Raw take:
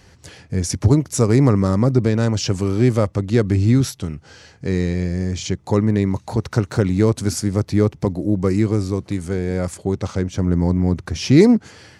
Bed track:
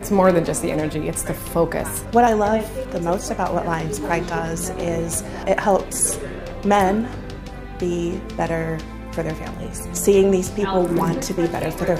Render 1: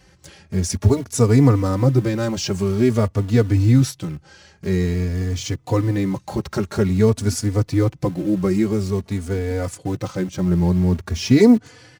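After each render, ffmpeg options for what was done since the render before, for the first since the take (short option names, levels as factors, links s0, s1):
-filter_complex "[0:a]asplit=2[s0][s1];[s1]acrusher=bits=4:mix=0:aa=0.000001,volume=0.282[s2];[s0][s2]amix=inputs=2:normalize=0,asplit=2[s3][s4];[s4]adelay=3.4,afreqshift=0.49[s5];[s3][s5]amix=inputs=2:normalize=1"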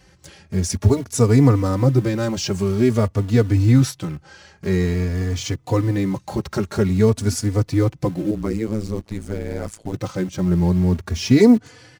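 -filter_complex "[0:a]asettb=1/sr,asplit=3[s0][s1][s2];[s0]atrim=end=3.684[s3];[s1]atrim=start=3.68:end=5.52,asetpts=PTS-STARTPTS,afade=t=in:d=0.004:c=qsin,afade=t=out:st=1.836:d=0.004:c=qsin,equalizer=f=1100:w=0.62:g=4[s4];[s2]atrim=start=5.516[s5];[s3][s4]acrossfade=d=0.004:c1=hsin:c2=qsin[s6];[s6][s5]acrossfade=d=0.004:c1=qsin:c2=hsin,asettb=1/sr,asplit=3[s7][s8][s9];[s7]atrim=end=8.314[s10];[s8]atrim=start=8.31:end=9.94,asetpts=PTS-STARTPTS,afade=t=in:d=0.004:c=qsin,afade=t=out:st=1.626:d=0.004:c=qsin,tremolo=f=110:d=1[s11];[s9]atrim=start=9.936[s12];[s10][s11]acrossfade=d=0.004:c1=hsin:c2=qsin[s13];[s13][s12]acrossfade=d=0.004:c1=qsin:c2=hsin"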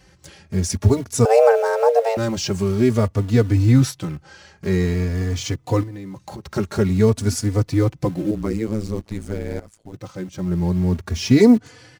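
-filter_complex "[0:a]asettb=1/sr,asplit=3[s0][s1][s2];[s0]atrim=end=1.254[s3];[s1]atrim=start=1.25:end=2.17,asetpts=PTS-STARTPTS,afade=t=in:d=0.004:c=qsin,afade=t=out:st=0.916:d=0.004:c=qsin,afreqshift=340[s4];[s2]atrim=start=2.166[s5];[s3][s4]acrossfade=d=0.004:c1=hsin:c2=qsin[s6];[s6][s5]acrossfade=d=0.004:c1=qsin:c2=hsin,asettb=1/sr,asplit=3[s7][s8][s9];[s7]atrim=end=5.834[s10];[s8]atrim=start=5.83:end=6.56,asetpts=PTS-STARTPTS,afade=t=in:d=0.004:c=qsin,afade=t=out:st=0.726:d=0.004:c=qsin,acompressor=threshold=0.0316:ratio=12:attack=3.2:release=140:knee=1:detection=peak[s11];[s9]atrim=start=6.556[s12];[s10][s11]acrossfade=d=0.004:c1=hsin:c2=qsin[s13];[s13][s12]acrossfade=d=0.004:c1=qsin:c2=hsin,asplit=2[s14][s15];[s14]atrim=end=9.6,asetpts=PTS-STARTPTS,afade=t=out:st=9.596:d=0.004:c=hsin:silence=0.133352[s16];[s15]atrim=start=9.6,asetpts=PTS-STARTPTS,afade=t=in:d=1.58:silence=0.133352[s17];[s16][s17]concat=n=2:v=0:a=1"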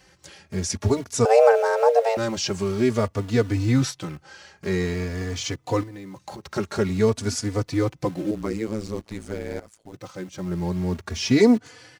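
-filter_complex "[0:a]acrossover=split=9000[s0][s1];[s1]acompressor=threshold=0.00158:ratio=4:attack=1:release=60[s2];[s0][s2]amix=inputs=2:normalize=0,lowshelf=f=250:g=-9.5"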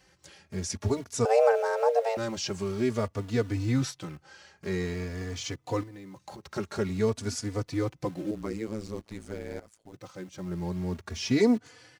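-af "volume=0.473"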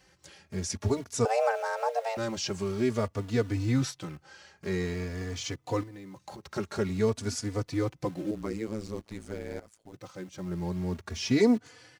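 -filter_complex "[0:a]asettb=1/sr,asplit=3[s0][s1][s2];[s0]atrim=end=1.274[s3];[s1]atrim=start=1.27:end=2.18,asetpts=PTS-STARTPTS,afade=t=in:d=0.004:c=qsin,afade=t=out:st=0.906:d=0.004:c=qsin,equalizer=f=440:t=o:w=0.61:g=-11.5[s4];[s2]atrim=start=2.176[s5];[s3][s4]acrossfade=d=0.004:c1=hsin:c2=qsin[s6];[s6][s5]acrossfade=d=0.004:c1=qsin:c2=hsin"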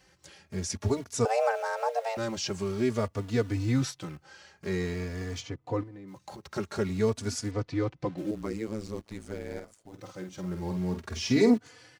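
-filter_complex "[0:a]asplit=3[s0][s1][s2];[s0]afade=t=out:st=5.4:d=0.02[s3];[s1]lowpass=f=1200:p=1,afade=t=in:st=5.4:d=0.02,afade=t=out:st=6.07:d=0.02[s4];[s2]afade=t=in:st=6.07:d=0.02[s5];[s3][s4][s5]amix=inputs=3:normalize=0,asettb=1/sr,asplit=3[s6][s7][s8];[s6]atrim=end=7.514[s9];[s7]atrim=start=7.51:end=8.18,asetpts=PTS-STARTPTS,afade=t=in:d=0.004:c=qsin,afade=t=out:st=0.666:d=0.004:c=qsin,lowpass=4200[s10];[s8]atrim=start=8.176[s11];[s9][s10]acrossfade=d=0.004:c1=hsin:c2=qsin[s12];[s12][s11]acrossfade=d=0.004:c1=qsin:c2=hsin,asettb=1/sr,asplit=3[s13][s14][s15];[s13]atrim=end=9.524[s16];[s14]atrim=start=9.52:end=11.54,asetpts=PTS-STARTPTS,afade=t=in:d=0.004:c=qsin,afade=t=out:st=2.016:d=0.004:c=qsin,asplit=2[s17][s18];[s18]adelay=49,volume=0.447[s19];[s17][s19]amix=inputs=2:normalize=0,atrim=end_sample=89082[s20];[s15]atrim=start=11.536[s21];[s16][s20]acrossfade=d=0.004:c1=hsin:c2=qsin[s22];[s22][s21]acrossfade=d=0.004:c1=qsin:c2=hsin"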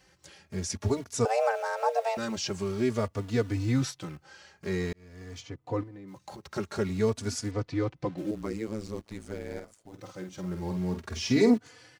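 -filter_complex "[0:a]asettb=1/sr,asplit=3[s0][s1][s2];[s0]atrim=end=1.834[s3];[s1]atrim=start=1.83:end=2.36,asetpts=PTS-STARTPTS,afade=t=in:d=0.004:c=qsin,afade=t=out:st=0.526:d=0.004:c=qsin,aecho=1:1:4.5:0.58,atrim=end_sample=23373[s4];[s2]atrim=start=2.356[s5];[s3][s4]acrossfade=d=0.004:c1=hsin:c2=qsin[s6];[s6][s5]acrossfade=d=0.004:c1=qsin:c2=hsin,asplit=2[s7][s8];[s7]atrim=end=4.93,asetpts=PTS-STARTPTS,afade=t=out:st=4.926:d=0.004:c=hsin[s9];[s8]atrim=start=4.93,asetpts=PTS-STARTPTS,afade=t=in:d=0.86[s10];[s9][s10]concat=n=2:v=0:a=1"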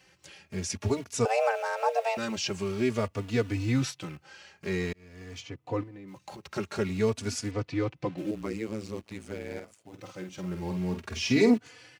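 -af "highpass=72,equalizer=f=2600:t=o:w=0.57:g=7"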